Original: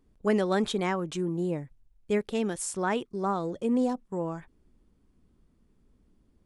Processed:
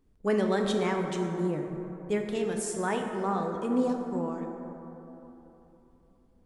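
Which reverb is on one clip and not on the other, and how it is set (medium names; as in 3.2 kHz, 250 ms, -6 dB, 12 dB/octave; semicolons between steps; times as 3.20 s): plate-style reverb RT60 3.4 s, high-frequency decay 0.35×, DRR 2.5 dB; trim -2.5 dB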